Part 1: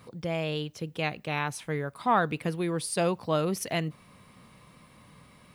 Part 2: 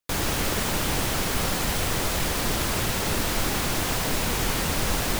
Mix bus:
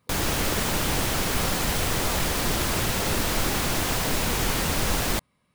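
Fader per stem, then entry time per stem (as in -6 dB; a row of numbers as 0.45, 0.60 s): -15.0, +0.5 dB; 0.00, 0.00 s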